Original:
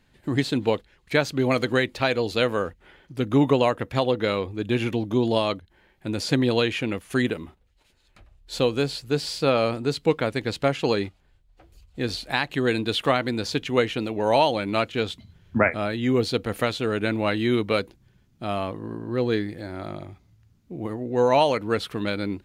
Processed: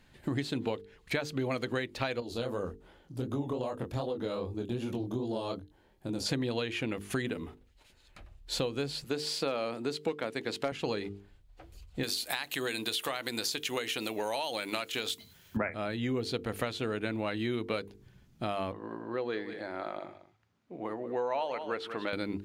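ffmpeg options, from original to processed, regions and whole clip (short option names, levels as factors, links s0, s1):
-filter_complex "[0:a]asettb=1/sr,asplit=3[s0][s1][s2];[s0]atrim=end=2.204[s3];[s1]atrim=start=2.2:end=6.26,asetpts=PTS-STARTPTS,afade=t=in:d=0.004:c=qsin,afade=t=out:st=4.056:d=0.004:c=qsin,equalizer=f=2100:t=o:w=1.3:g=-12.5,acompressor=threshold=0.0501:ratio=2:attack=3.2:release=140:knee=1:detection=peak,flanger=delay=20:depth=6.2:speed=2.6[s4];[s2]atrim=start=6.256[s5];[s3][s4]acrossfade=d=0.004:c1=hsin:c2=qsin[s6];[s6][s5]acrossfade=d=0.004:c1=qsin:c2=hsin,asettb=1/sr,asplit=3[s7][s8][s9];[s7]atrim=end=9.044[s10];[s8]atrim=start=9.04:end=10.72,asetpts=PTS-STARTPTS,afade=t=in:d=0.004:c=qsin,afade=t=out:st=1.676:d=0.004:c=qsin,highpass=210,volume=3.16,asoftclip=hard,volume=0.316[s11];[s9]atrim=start=10.716[s12];[s10][s11]acrossfade=d=0.004:c1=hsin:c2=qsin[s13];[s13][s12]acrossfade=d=0.004:c1=qsin:c2=hsin,asettb=1/sr,asplit=3[s14][s15][s16];[s14]atrim=end=12.034[s17];[s15]atrim=start=12.03:end=15.57,asetpts=PTS-STARTPTS,afade=t=in:d=0.004:c=qsin,afade=t=out:st=3.536:d=0.004:c=qsin,aemphasis=mode=production:type=riaa,acompressor=threshold=0.0631:ratio=2.5:attack=3.2:release=140:knee=1:detection=peak[s18];[s16]atrim=start=15.566[s19];[s17][s18]acrossfade=d=0.004:c1=hsin:c2=qsin[s20];[s20][s19]acrossfade=d=0.004:c1=qsin:c2=hsin,asettb=1/sr,asplit=3[s21][s22][s23];[s21]atrim=end=18.724[s24];[s22]atrim=start=18.72:end=22.13,asetpts=PTS-STARTPTS,afade=t=in:d=0.004:c=qsin,afade=t=out:st=3.406:d=0.004:c=qsin,highpass=660,aemphasis=mode=reproduction:type=riaa,aecho=1:1:187:0.188,atrim=end_sample=150381[s25];[s23]atrim=start=22.126[s26];[s24][s25]acrossfade=d=0.004:c1=hsin:c2=qsin[s27];[s27][s26]acrossfade=d=0.004:c1=qsin:c2=hsin,bandreject=f=50:t=h:w=6,bandreject=f=100:t=h:w=6,bandreject=f=150:t=h:w=6,bandreject=f=200:t=h:w=6,bandreject=f=250:t=h:w=6,bandreject=f=300:t=h:w=6,bandreject=f=350:t=h:w=6,bandreject=f=400:t=h:w=6,bandreject=f=450:t=h:w=6,acompressor=threshold=0.0251:ratio=5,volume=1.19"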